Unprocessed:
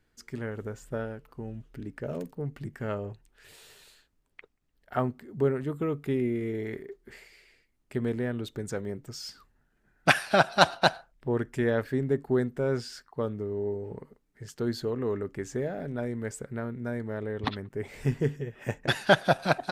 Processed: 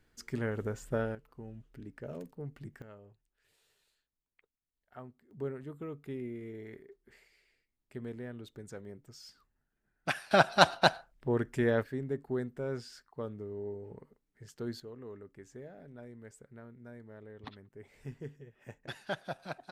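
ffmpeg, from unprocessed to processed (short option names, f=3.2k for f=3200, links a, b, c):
-af "asetnsamples=n=441:p=0,asendcmd='1.15 volume volume -8dB;2.82 volume volume -20dB;5.31 volume volume -12dB;10.31 volume volume -2dB;11.83 volume volume -8.5dB;14.8 volume volume -16.5dB',volume=1dB"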